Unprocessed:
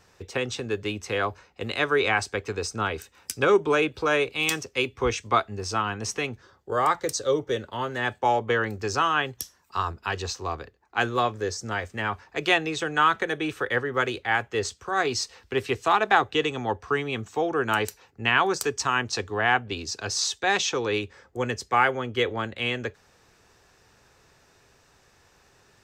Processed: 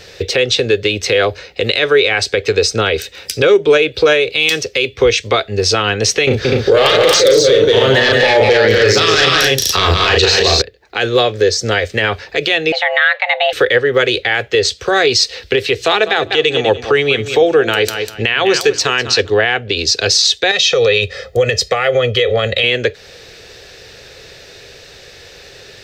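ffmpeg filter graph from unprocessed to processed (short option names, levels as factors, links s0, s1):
-filter_complex "[0:a]asettb=1/sr,asplit=3[s0][s1][s2];[s0]atrim=end=6.274[s3];[s1]atrim=start=6.27:end=10.62,asetpts=PTS-STARTPTS,afade=t=in:d=0.004:c=qsin,afade=t=out:st=4.346:d=0.004:c=qsin,aeval=exprs='0.335*sin(PI/2*2.51*val(0)/0.335)':c=same,asplit=2[s4][s5];[s5]adelay=37,volume=0.631[s6];[s4][s6]amix=inputs=2:normalize=0,atrim=end_sample=191835,aecho=1:1:177|249:0.473|0.631,atrim=end_sample=191835[s7];[s2]atrim=start=10.616[s8];[s3][s7]acrossfade=d=0.004:c1=hsin:c2=qsin[s9];[s9][s8]acrossfade=d=0.004:c1=qsin:c2=hsin,asettb=1/sr,asplit=3[s10][s11][s12];[s10]atrim=end=12.724[s13];[s11]atrim=start=12.72:end=13.53,asetpts=PTS-STARTPTS,afade=t=in:d=0.004:c=qsin,afade=t=out:st=0.806:d=0.004:c=qsin,highpass=160,lowpass=2200,afreqshift=370[s14];[s12]atrim=start=13.526[s15];[s13][s14]acrossfade=d=0.004:c1=hsin:c2=qsin[s16];[s16][s15]acrossfade=d=0.004:c1=qsin:c2=hsin,asettb=1/sr,asplit=3[s17][s18][s19];[s17]atrim=end=15.754[s20];[s18]atrim=start=15.75:end=19.3,asetpts=PTS-STARTPTS,afade=t=in:d=0.004:c=qsin,afade=t=out:st=3.546:d=0.004:c=qsin,bandreject=f=60:t=h:w=6,bandreject=f=120:t=h:w=6,bandreject=f=180:t=h:w=6,bandreject=f=240:t=h:w=6,bandreject=f=300:t=h:w=6,bandreject=f=360:t=h:w=6,aecho=1:1:198|396:0.2|0.0359,atrim=end_sample=156555[s21];[s19]atrim=start=19.296[s22];[s20][s21]acrossfade=d=0.004:c1=hsin:c2=qsin[s23];[s23][s22]acrossfade=d=0.004:c1=qsin:c2=hsin,asettb=1/sr,asplit=3[s24][s25][s26];[s24]atrim=end=20.514[s27];[s25]atrim=start=20.51:end=22.64,asetpts=PTS-STARTPTS,afade=t=in:d=0.004:c=qsin,afade=t=out:st=2.126:d=0.004:c=qsin,aecho=1:1:1.6:0.85,atrim=end_sample=93933,acompressor=threshold=0.0562:ratio=12:attack=3.2:release=140:knee=1:detection=peak[s28];[s26]atrim=start=22.636[s29];[s27][s28]acrossfade=d=0.004:c1=hsin:c2=qsin[s30];[s30][s29]acrossfade=d=0.004:c1=qsin:c2=hsin,equalizer=f=250:t=o:w=1:g=-6,equalizer=f=500:t=o:w=1:g=11,equalizer=f=1000:t=o:w=1:g=-12,equalizer=f=2000:t=o:w=1:g=5,equalizer=f=4000:t=o:w=1:g=11,equalizer=f=8000:t=o:w=1:g=-4,acompressor=threshold=0.0282:ratio=2,alimiter=level_in=8.91:limit=0.891:release=50:level=0:latency=1,volume=0.891"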